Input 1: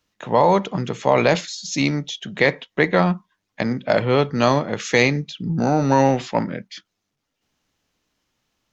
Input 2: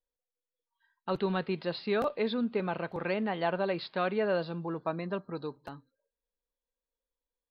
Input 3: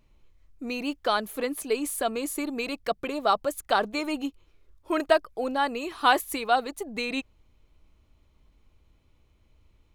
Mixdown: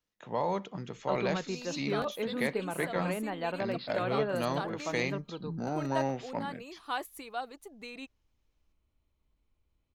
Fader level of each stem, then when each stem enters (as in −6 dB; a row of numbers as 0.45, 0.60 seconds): −15.5, −4.0, −14.0 decibels; 0.00, 0.00, 0.85 seconds